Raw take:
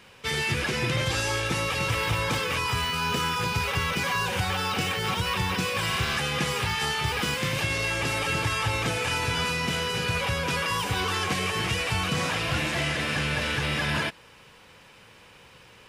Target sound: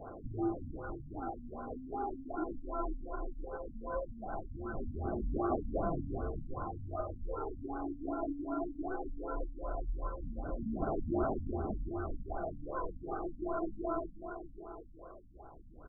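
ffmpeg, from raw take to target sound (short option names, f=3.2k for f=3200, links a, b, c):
-filter_complex "[0:a]lowpass=f=2.6k:t=q:w=0.5098,lowpass=f=2.6k:t=q:w=0.6013,lowpass=f=2.6k:t=q:w=0.9,lowpass=f=2.6k:t=q:w=2.563,afreqshift=-3000,tiltshelf=f=970:g=8,acompressor=threshold=-36dB:ratio=12,aecho=1:1:2.8:0.39,asplit=2[a][b];[b]aecho=0:1:492|984|1476|1968|2460:0.398|0.183|0.0842|0.0388|0.0178[c];[a][c]amix=inputs=2:normalize=0,aphaser=in_gain=1:out_gain=1:delay=3:decay=0.66:speed=0.18:type=sinusoidal,bandreject=f=940:w=11,asplit=2[d][e];[e]aecho=0:1:818:0.188[f];[d][f]amix=inputs=2:normalize=0,afftfilt=real='re*lt(b*sr/1024,260*pow(1600/260,0.5+0.5*sin(2*PI*2.6*pts/sr)))':imag='im*lt(b*sr/1024,260*pow(1600/260,0.5+0.5*sin(2*PI*2.6*pts/sr)))':win_size=1024:overlap=0.75"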